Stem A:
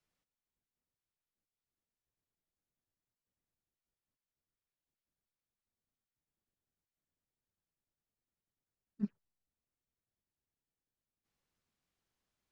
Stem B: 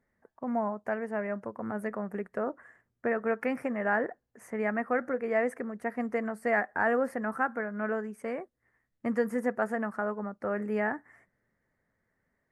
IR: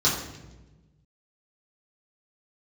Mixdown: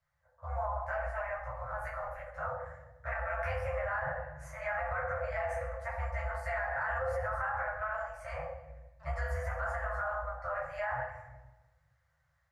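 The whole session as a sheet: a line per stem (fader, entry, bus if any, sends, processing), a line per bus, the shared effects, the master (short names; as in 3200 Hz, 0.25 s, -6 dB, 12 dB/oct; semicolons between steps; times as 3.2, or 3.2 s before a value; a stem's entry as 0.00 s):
-7.5 dB, 0.00 s, no send, bell 860 Hz +12.5 dB 2.1 oct
-5.5 dB, 0.00 s, send -5.5 dB, AM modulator 170 Hz, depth 65%; ensemble effect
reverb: on, RT60 1.1 s, pre-delay 3 ms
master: FFT band-reject 160–490 Hz; AGC gain up to 4.5 dB; limiter -26 dBFS, peak gain reduction 9.5 dB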